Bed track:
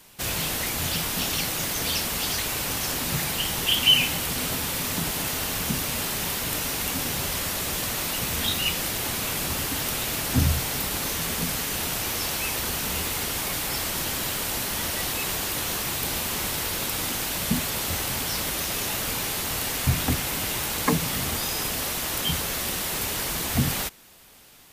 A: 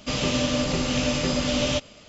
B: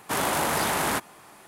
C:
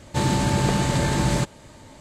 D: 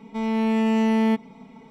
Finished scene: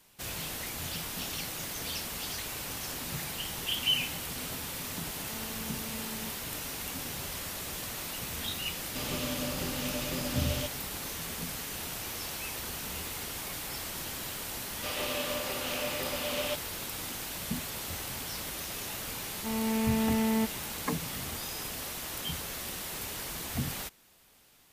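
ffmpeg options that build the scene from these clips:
-filter_complex "[4:a]asplit=2[a][b];[1:a]asplit=2[c][d];[0:a]volume=-10dB[e];[a]alimiter=limit=-22.5dB:level=0:latency=1:release=71[f];[d]highpass=490,lowpass=3.6k[g];[f]atrim=end=1.7,asetpts=PTS-STARTPTS,volume=-17dB,afade=t=in:d=0.004:c=hsin,afade=t=out:st=1.696:d=0.004:c=hsin,adelay=5150[h];[c]atrim=end=2.08,asetpts=PTS-STARTPTS,volume=-11.5dB,afade=t=in:d=0.004:c=hsin,afade=t=out:st=2.076:d=0.004:c=hsin,adelay=8880[i];[g]atrim=end=2.08,asetpts=PTS-STARTPTS,volume=-6dB,afade=t=in:d=0.004:c=hsin,afade=t=out:st=2.076:d=0.004:c=hsin,adelay=650916S[j];[b]atrim=end=1.7,asetpts=PTS-STARTPTS,volume=-8dB,afade=t=in:d=0.004:c=hsin,afade=t=out:st=1.696:d=0.004:c=hsin,adelay=19300[k];[e][h][i][j][k]amix=inputs=5:normalize=0"

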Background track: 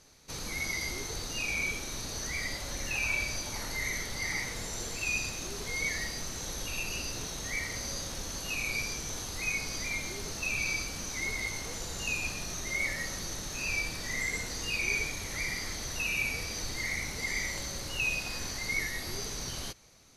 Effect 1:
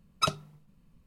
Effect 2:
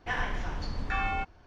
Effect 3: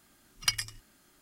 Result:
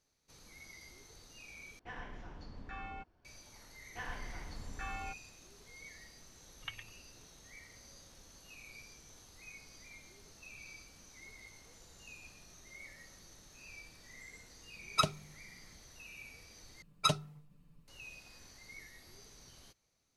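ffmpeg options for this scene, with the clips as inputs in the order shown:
-filter_complex "[2:a]asplit=2[a][b];[1:a]asplit=2[c][d];[0:a]volume=-20dB[e];[a]equalizer=f=280:t=o:w=2.5:g=5[f];[3:a]aresample=8000,aresample=44100[g];[d]aecho=1:1:6.8:0.75[h];[e]asplit=3[i][j][k];[i]atrim=end=1.794[l];[f]atrim=end=1.46,asetpts=PTS-STARTPTS,volume=-16.5dB[m];[j]atrim=start=3.246:end=16.824[n];[h]atrim=end=1.06,asetpts=PTS-STARTPTS,volume=-4dB[o];[k]atrim=start=17.876[p];[b]atrim=end=1.46,asetpts=PTS-STARTPTS,volume=-12dB,afade=t=in:d=0.004:c=hsin,afade=t=out:st=1.456:d=0.004:c=hsin,adelay=171549S[q];[g]atrim=end=1.21,asetpts=PTS-STARTPTS,volume=-12.5dB,afade=t=in:d=0.004:c=hsin,afade=t=out:st=1.206:d=0.004:c=hsin,adelay=6200[r];[c]atrim=end=1.06,asetpts=PTS-STARTPTS,volume=-2.5dB,afade=t=in:d=0.004:c=hsin,afade=t=out:st=1.056:d=0.004:c=hsin,adelay=650916S[s];[l][m]acrossfade=d=0.004:c1=hsin:c2=hsin[t];[t][n]acrossfade=d=0.004:c1=hsin:c2=hsin[u];[u][o]acrossfade=d=0.004:c1=hsin:c2=hsin[v];[v][p]acrossfade=d=0.004:c1=hsin:c2=hsin[w];[w][q][r][s]amix=inputs=4:normalize=0"

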